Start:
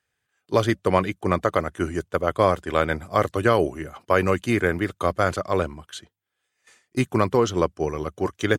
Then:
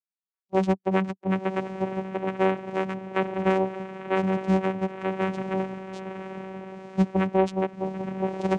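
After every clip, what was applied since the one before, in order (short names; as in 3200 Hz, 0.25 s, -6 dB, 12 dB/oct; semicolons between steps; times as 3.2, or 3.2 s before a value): per-bin expansion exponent 1.5; diffused feedback echo 0.997 s, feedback 43%, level -9 dB; vocoder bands 4, saw 190 Hz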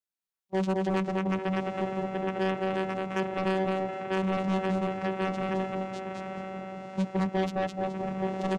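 on a send: feedback echo 0.212 s, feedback 25%, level -4 dB; on the sum: soft clip -23.5 dBFS, distortion -10 dB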